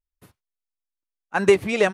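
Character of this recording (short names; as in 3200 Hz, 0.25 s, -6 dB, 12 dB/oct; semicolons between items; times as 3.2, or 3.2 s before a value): noise floor -87 dBFS; spectral tilt -3.5 dB/oct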